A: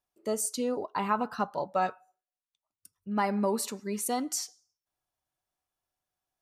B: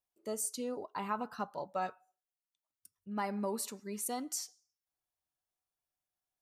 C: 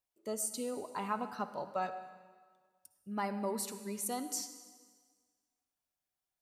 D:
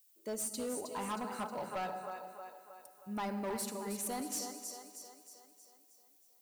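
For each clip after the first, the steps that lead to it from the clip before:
high-shelf EQ 7,400 Hz +5.5 dB; level −8 dB
convolution reverb RT60 1.6 s, pre-delay 48 ms, DRR 11 dB
echo with a time of its own for lows and highs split 310 Hz, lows 112 ms, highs 315 ms, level −8 dB; background noise violet −67 dBFS; gain into a clipping stage and back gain 33.5 dB

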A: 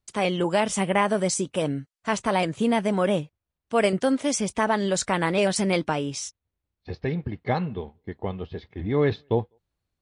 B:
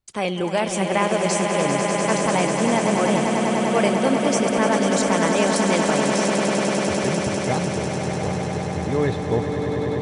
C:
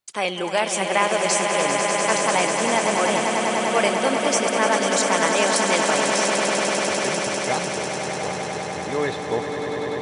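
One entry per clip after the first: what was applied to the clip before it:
echo that builds up and dies away 99 ms, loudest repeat 8, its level −8 dB
high-pass filter 770 Hz 6 dB per octave; level +4 dB

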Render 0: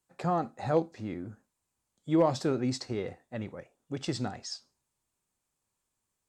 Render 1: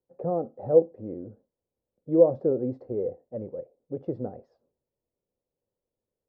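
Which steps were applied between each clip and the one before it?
low-pass with resonance 510 Hz, resonance Q 4.9
level −3 dB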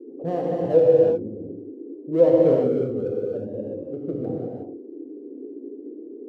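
adaptive Wiener filter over 25 samples
noise in a band 260–430 Hz −43 dBFS
reverb whose tail is shaped and stops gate 390 ms flat, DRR −4 dB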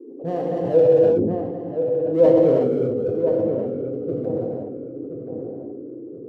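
on a send: feedback echo with a low-pass in the loop 1,027 ms, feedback 41%, low-pass 1,400 Hz, level −7 dB
on the sum: level that may fall only so fast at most 31 dB per second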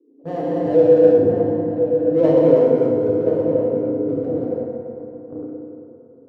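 noise gate −29 dBFS, range −16 dB
parametric band 1,800 Hz +4 dB 1.7 octaves
feedback delay network reverb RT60 3 s, high-frequency decay 0.5×, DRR −1 dB
level −2.5 dB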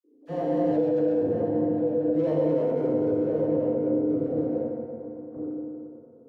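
brickwall limiter −12.5 dBFS, peak gain reduction 11 dB
tuned comb filter 76 Hz, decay 0.19 s, harmonics all, mix 70%
all-pass dispersion lows, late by 41 ms, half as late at 1,300 Hz

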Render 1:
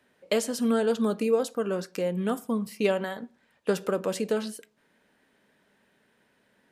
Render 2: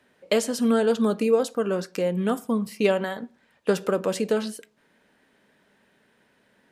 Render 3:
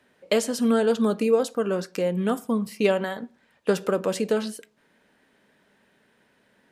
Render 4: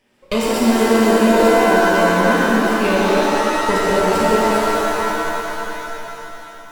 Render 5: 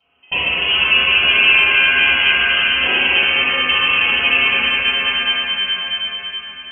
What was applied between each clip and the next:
high-shelf EQ 12,000 Hz −5 dB; level +3.5 dB
no processing that can be heard
lower of the sound and its delayed copy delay 0.39 ms; reverb with rising layers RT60 3.4 s, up +7 semitones, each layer −2 dB, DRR −6 dB
voice inversion scrambler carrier 3,100 Hz; convolution reverb RT60 0.65 s, pre-delay 3 ms, DRR −9.5 dB; level −11.5 dB

